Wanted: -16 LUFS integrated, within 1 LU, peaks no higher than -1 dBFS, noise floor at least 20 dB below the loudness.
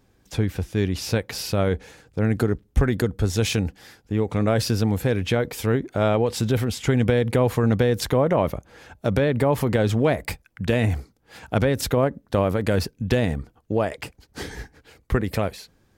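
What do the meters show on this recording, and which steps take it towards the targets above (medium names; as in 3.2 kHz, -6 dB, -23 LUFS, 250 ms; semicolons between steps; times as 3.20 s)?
dropouts 1; longest dropout 2.7 ms; loudness -23.5 LUFS; peak level -6.5 dBFS; loudness target -16.0 LUFS
-> interpolate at 12.61 s, 2.7 ms; trim +7.5 dB; peak limiter -1 dBFS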